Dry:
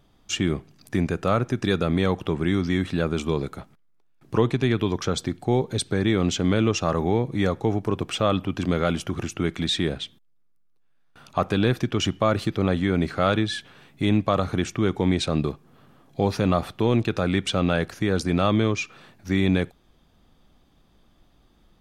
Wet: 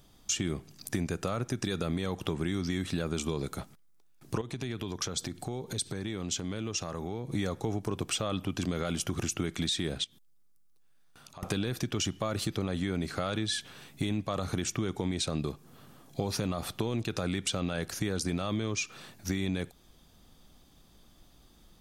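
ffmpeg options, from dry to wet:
ffmpeg -i in.wav -filter_complex "[0:a]asettb=1/sr,asplit=3[link_01][link_02][link_03];[link_01]atrim=end=4.414[link_04];[link_02]atrim=start=4.41:end=7.31,asetpts=PTS-STARTPTS,afade=type=in:duration=0.004:curve=qsin,afade=type=out:start_time=2.896:duration=0.004:curve=qsin,acompressor=threshold=-33dB:ratio=4:attack=3.2:release=140:knee=1:detection=peak[link_05];[link_03]atrim=start=7.306[link_06];[link_04][link_05]acrossfade=duration=0.004:curve1=hsin:curve2=qsin[link_07];[link_07][link_06]acrossfade=duration=0.004:curve1=qsin:curve2=hsin,asettb=1/sr,asplit=3[link_08][link_09][link_10];[link_08]atrim=end=10.044[link_11];[link_09]atrim=start=10.04:end=11.43,asetpts=PTS-STARTPTS,afade=type=in:duration=0.004:curve=qsin,afade=type=out:start_time=1.386:duration=0.004:curve=qsin,acompressor=threshold=-55dB:ratio=2.5:attack=3.2:release=140:knee=1:detection=peak[link_12];[link_10]atrim=start=11.426[link_13];[link_11][link_12]acrossfade=duration=0.004:curve1=hsin:curve2=qsin[link_14];[link_14][link_13]acrossfade=duration=0.004:curve1=qsin:curve2=hsin,bass=frequency=250:gain=1,treble=frequency=4000:gain=12,alimiter=limit=-12.5dB:level=0:latency=1:release=35,acompressor=threshold=-27dB:ratio=5,volume=-1dB" out.wav

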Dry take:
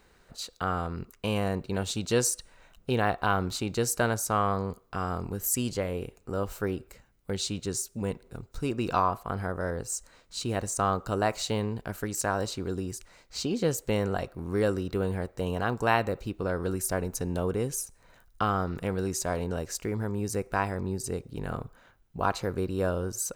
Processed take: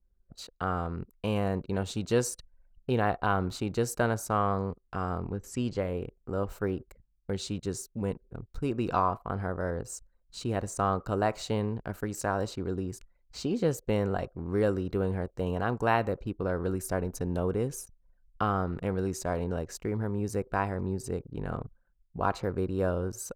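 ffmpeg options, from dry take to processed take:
ffmpeg -i in.wav -filter_complex "[0:a]asettb=1/sr,asplit=3[link_01][link_02][link_03];[link_01]atrim=end=5.194[link_04];[link_02]atrim=start=5.19:end=5.77,asetpts=PTS-STARTPTS,afade=type=in:duration=0.004:curve=qsin,afade=type=out:start_time=0.576:duration=0.004:curve=qsin,lowpass=5300[link_05];[link_03]atrim=start=5.766[link_06];[link_04][link_05]acrossfade=duration=0.004:curve1=hsin:curve2=qsin[link_07];[link_07][link_06]acrossfade=duration=0.004:curve1=qsin:curve2=hsin,anlmdn=0.0158,highshelf=frequency=2300:gain=-8.5" out.wav

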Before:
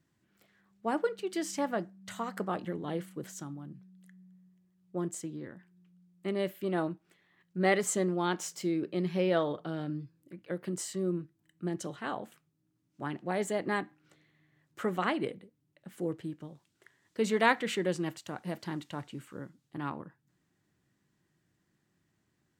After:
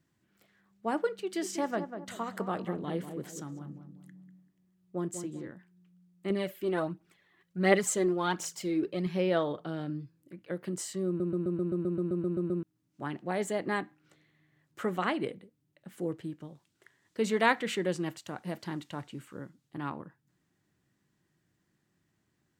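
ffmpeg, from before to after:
ffmpeg -i in.wav -filter_complex "[0:a]asettb=1/sr,asplit=3[link_01][link_02][link_03];[link_01]atrim=end=1.204[link_04];[link_02]atrim=start=1.2:end=5.51,asetpts=PTS-STARTPTS,afade=type=in:duration=0.004:curve=qsin,afade=type=out:start_time=4.306:duration=0.004:curve=qsin,asplit=2[link_05][link_06];[link_06]adelay=194,lowpass=frequency=1200:poles=1,volume=-7.5dB,asplit=2[link_07][link_08];[link_08]adelay=194,lowpass=frequency=1200:poles=1,volume=0.41,asplit=2[link_09][link_10];[link_10]adelay=194,lowpass=frequency=1200:poles=1,volume=0.41,asplit=2[link_11][link_12];[link_12]adelay=194,lowpass=frequency=1200:poles=1,volume=0.41,asplit=2[link_13][link_14];[link_14]adelay=194,lowpass=frequency=1200:poles=1,volume=0.41[link_15];[link_05][link_07][link_09][link_11][link_13][link_15]amix=inputs=6:normalize=0,atrim=end_sample=190071[link_16];[link_03]atrim=start=5.506[link_17];[link_04][link_16]acrossfade=duration=0.004:curve1=hsin:curve2=qsin[link_18];[link_18][link_17]acrossfade=duration=0.004:curve1=qsin:curve2=hsin,asettb=1/sr,asplit=3[link_19][link_20][link_21];[link_19]atrim=end=6.304[link_22];[link_20]atrim=start=6.3:end=9.07,asetpts=PTS-STARTPTS,afade=type=in:duration=0.004:curve=qsin,afade=type=out:start_time=2.766:duration=0.004:curve=qsin,aphaser=in_gain=1:out_gain=1:delay=3:decay=0.5:speed=1.4:type=triangular[link_23];[link_21]atrim=start=9.066[link_24];[link_22][link_23]acrossfade=duration=0.004:curve1=hsin:curve2=qsin[link_25];[link_25][link_24]acrossfade=duration=0.004:curve1=qsin:curve2=hsin,asplit=13[link_26][link_27][link_28][link_29][link_30][link_31][link_32][link_33][link_34][link_35][link_36][link_37][link_38];[link_26]atrim=end=11.202[link_39];[link_27]atrim=start=11.068:end=11.202[link_40];[link_28]atrim=start=11.068:end=11.202[link_41];[link_29]atrim=start=11.068:end=11.202[link_42];[link_30]atrim=start=11.068:end=11.202[link_43];[link_31]atrim=start=11.068:end=11.202[link_44];[link_32]atrim=start=11.068:end=11.202[link_45];[link_33]atrim=start=11.068:end=11.202[link_46];[link_34]atrim=start=11.068:end=11.202[link_47];[link_35]atrim=start=11.068:end=11.202[link_48];[link_36]atrim=start=11.068:end=11.202[link_49];[link_37]atrim=start=11.068:end=11.202[link_50];[link_38]atrim=start=12.628[link_51];[link_39][link_40]acrossfade=duration=0.004:curve1=hsin:curve2=hsin[link_52];[link_52][link_41]acrossfade=duration=0.004:curve1=hsin:curve2=hsin[link_53];[link_53][link_42]acrossfade=duration=0.004:curve1=hsin:curve2=hsin[link_54];[link_54][link_43]acrossfade=duration=0.004:curve1=hsin:curve2=hsin[link_55];[link_55][link_44]acrossfade=duration=0.004:curve1=hsin:curve2=hsin[link_56];[link_56][link_45]acrossfade=duration=0.004:curve1=hsin:curve2=hsin[link_57];[link_57][link_46]acrossfade=duration=0.004:curve1=hsin:curve2=hsin[link_58];[link_58][link_47]acrossfade=duration=0.004:curve1=hsin:curve2=hsin[link_59];[link_59][link_48]acrossfade=duration=0.004:curve1=hsin:curve2=hsin[link_60];[link_60][link_49]acrossfade=duration=0.004:curve1=hsin:curve2=hsin[link_61];[link_61][link_50]acrossfade=duration=0.004:curve1=hsin:curve2=hsin[link_62];[link_62][link_51]acrossfade=duration=0.004:curve1=hsin:curve2=hsin" out.wav

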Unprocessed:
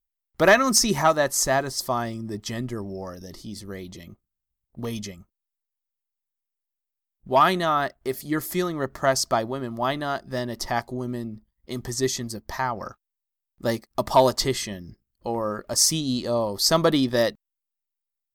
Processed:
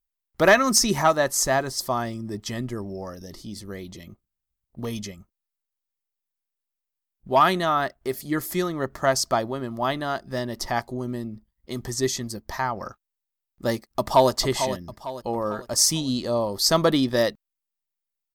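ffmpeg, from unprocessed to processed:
ffmpeg -i in.wav -filter_complex "[0:a]asplit=2[link_01][link_02];[link_02]afade=type=in:start_time=13.86:duration=0.01,afade=type=out:start_time=14.31:duration=0.01,aecho=0:1:450|900|1350|1800|2250:0.334965|0.150734|0.0678305|0.0305237|0.0137357[link_03];[link_01][link_03]amix=inputs=2:normalize=0" out.wav

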